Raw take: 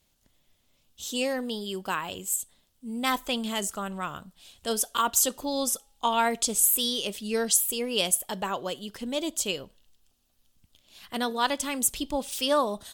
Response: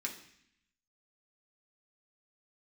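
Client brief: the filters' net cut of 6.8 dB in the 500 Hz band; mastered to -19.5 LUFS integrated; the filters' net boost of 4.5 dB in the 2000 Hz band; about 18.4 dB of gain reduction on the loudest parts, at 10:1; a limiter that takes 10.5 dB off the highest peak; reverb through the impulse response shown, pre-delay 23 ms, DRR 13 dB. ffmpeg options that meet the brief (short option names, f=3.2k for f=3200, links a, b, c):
-filter_complex "[0:a]equalizer=f=500:t=o:g=-8.5,equalizer=f=2k:t=o:g=6.5,acompressor=threshold=-37dB:ratio=10,alimiter=level_in=10dB:limit=-24dB:level=0:latency=1,volume=-10dB,asplit=2[a][b];[1:a]atrim=start_sample=2205,adelay=23[c];[b][c]afir=irnorm=-1:irlink=0,volume=-14dB[d];[a][d]amix=inputs=2:normalize=0,volume=24dB"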